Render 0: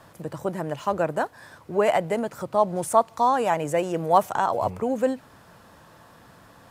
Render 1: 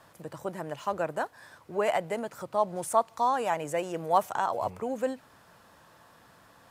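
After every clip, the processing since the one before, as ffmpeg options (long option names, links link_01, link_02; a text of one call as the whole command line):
ffmpeg -i in.wav -af "lowshelf=frequency=450:gain=-6,volume=-4dB" out.wav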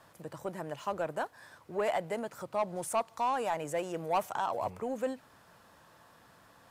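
ffmpeg -i in.wav -af "asoftclip=type=tanh:threshold=-19.5dB,volume=-2.5dB" out.wav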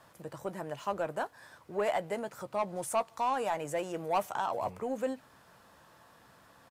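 ffmpeg -i in.wav -filter_complex "[0:a]asplit=2[link_01][link_02];[link_02]adelay=15,volume=-13.5dB[link_03];[link_01][link_03]amix=inputs=2:normalize=0" out.wav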